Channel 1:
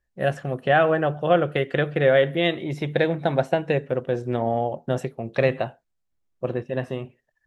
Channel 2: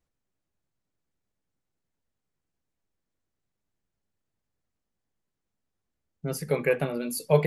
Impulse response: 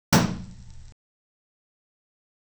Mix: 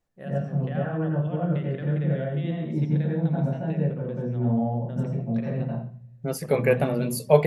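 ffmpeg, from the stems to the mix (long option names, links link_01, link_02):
-filter_complex "[0:a]alimiter=limit=-12.5dB:level=0:latency=1,acompressor=threshold=-28dB:ratio=2,volume=-13dB,asplit=2[link_01][link_02];[link_02]volume=-18dB[link_03];[1:a]equalizer=frequency=690:width_type=o:width=0.95:gain=6,volume=0.5dB[link_04];[2:a]atrim=start_sample=2205[link_05];[link_03][link_05]afir=irnorm=-1:irlink=0[link_06];[link_01][link_04][link_06]amix=inputs=3:normalize=0,equalizer=frequency=240:width=1.5:gain=2"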